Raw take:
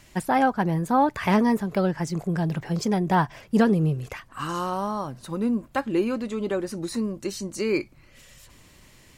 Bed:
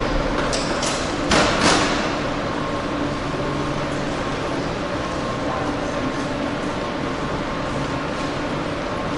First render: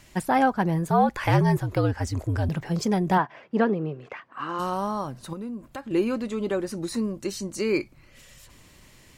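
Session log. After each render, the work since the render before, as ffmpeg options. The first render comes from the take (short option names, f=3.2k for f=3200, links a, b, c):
-filter_complex "[0:a]asettb=1/sr,asplit=3[a][b][c];[a]atrim=end=0.894[d];[b]atrim=start=0.89:end=2.49,asetpts=PTS-STARTPTS,afade=t=in:d=0.004:c=qsin,afade=t=out:st=1.596:d=0.004:c=qsin,afreqshift=-70[e];[c]atrim=start=2.486[f];[d][e]acrossfade=d=0.004:c1=hsin:c2=qsin[g];[g][f]acrossfade=d=0.004:c1=qsin:c2=hsin,asplit=3[h][i][j];[h]afade=t=out:st=3.17:d=0.02[k];[i]highpass=270,lowpass=2.4k,afade=t=in:st=3.17:d=0.02,afade=t=out:st=4.58:d=0.02[l];[j]afade=t=in:st=4.58:d=0.02[m];[k][l][m]amix=inputs=3:normalize=0,asettb=1/sr,asplit=3[n][o][p];[n]atrim=end=5.334[q];[o]atrim=start=5.33:end=5.91,asetpts=PTS-STARTPTS,afade=t=in:d=0.004:c=qsin,afade=t=out:st=0.576:d=0.004:c=qsin,acompressor=threshold=-36dB:ratio=2.5:attack=3.2:release=140:knee=1:detection=peak[r];[p]atrim=start=5.906[s];[q][r]acrossfade=d=0.004:c1=hsin:c2=qsin[t];[t][s]acrossfade=d=0.004:c1=qsin:c2=hsin"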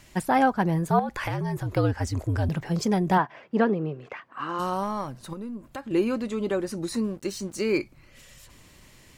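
-filter_complex "[0:a]asettb=1/sr,asplit=3[a][b][c];[a]atrim=end=0.994[d];[b]atrim=start=0.99:end=1.66,asetpts=PTS-STARTPTS,afade=t=in:d=0.004:c=qsin,afade=t=out:st=0.666:d=0.004:c=qsin,acompressor=threshold=-25dB:ratio=6:attack=3.2:release=140:knee=1:detection=peak[e];[c]atrim=start=1.656[f];[d][e]acrossfade=d=0.004:c1=hsin:c2=qsin[g];[g][f]acrossfade=d=0.004:c1=qsin:c2=hsin,asettb=1/sr,asplit=3[h][i][j];[h]atrim=end=4.834[k];[i]atrim=start=4.83:end=5.66,asetpts=PTS-STARTPTS,afade=t=in:d=0.004:c=qsin,afade=t=out:st=0.826:d=0.004:c=qsin,aeval=exprs='if(lt(val(0),0),0.708*val(0),val(0))':c=same[l];[j]atrim=start=5.656[m];[k][l]acrossfade=d=0.004:c1=hsin:c2=qsin[n];[n][m]acrossfade=d=0.004:c1=qsin:c2=hsin,asettb=1/sr,asplit=3[o][p][q];[o]atrim=end=7.044[r];[p]atrim=start=7.04:end=7.78,asetpts=PTS-STARTPTS,afade=t=in:d=0.004:c=qsin,afade=t=out:st=0.736:d=0.004:c=qsin,aeval=exprs='sgn(val(0))*max(abs(val(0))-0.00299,0)':c=same[s];[q]atrim=start=7.776[t];[r][s]acrossfade=d=0.004:c1=hsin:c2=qsin[u];[u][t]acrossfade=d=0.004:c1=qsin:c2=hsin"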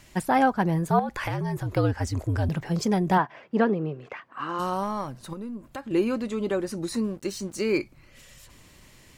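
-af anull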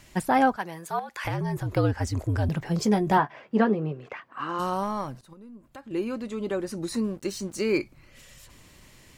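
-filter_complex "[0:a]asettb=1/sr,asplit=3[a][b][c];[a]atrim=end=0.564[d];[b]atrim=start=0.56:end=1.25,asetpts=PTS-STARTPTS,afade=t=in:d=0.004:c=qsin,afade=t=out:st=0.686:d=0.004:c=qsin,highpass=f=1.4k:p=1[e];[c]atrim=start=1.246[f];[d][e]acrossfade=d=0.004:c1=hsin:c2=qsin[g];[g][f]acrossfade=d=0.004:c1=qsin:c2=hsin,asettb=1/sr,asplit=3[h][i][j];[h]atrim=end=2.804[k];[i]atrim=start=2.8:end=3.92,asetpts=PTS-STARTPTS,afade=t=in:d=0.004:c=qsin,afade=t=out:st=1.116:d=0.004:c=qsin,asplit=2[l][m];[m]adelay=14,volume=-8dB[n];[l][n]amix=inputs=2:normalize=0,atrim=end_sample=49392[o];[j]atrim=start=3.916[p];[k][o]acrossfade=d=0.004:c1=hsin:c2=qsin[q];[q][p]acrossfade=d=0.004:c1=qsin:c2=hsin,asplit=2[r][s];[r]atrim=end=5.21,asetpts=PTS-STARTPTS,afade=t=out:st=5.206:d=0.004:c=hsin:silence=0.177828[t];[s]atrim=start=5.21,asetpts=PTS-STARTPTS,afade=t=in:d=1.86:silence=0.177828[u];[t][u]concat=n=2:v=0:a=1"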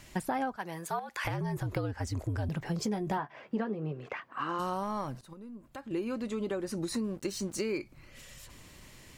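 -af "acompressor=threshold=-30dB:ratio=6"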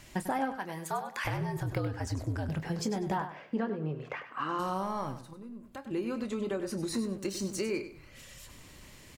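-filter_complex "[0:a]asplit=2[a][b];[b]adelay=26,volume=-12.5dB[c];[a][c]amix=inputs=2:normalize=0,aecho=1:1:98|196|294:0.282|0.0705|0.0176"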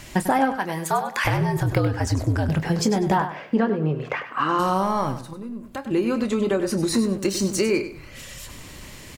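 -af "volume=11.5dB"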